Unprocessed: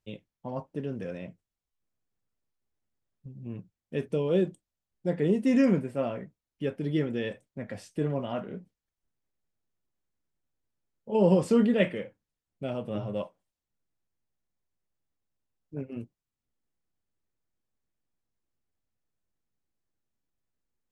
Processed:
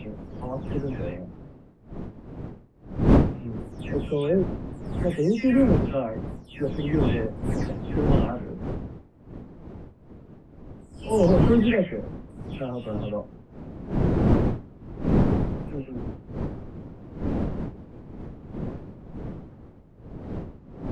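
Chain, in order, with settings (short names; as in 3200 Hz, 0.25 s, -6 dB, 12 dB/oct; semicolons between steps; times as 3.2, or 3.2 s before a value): spectral delay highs early, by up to 0.328 s; wind noise 250 Hz -31 dBFS; hard clip -13 dBFS, distortion -21 dB; gain +3 dB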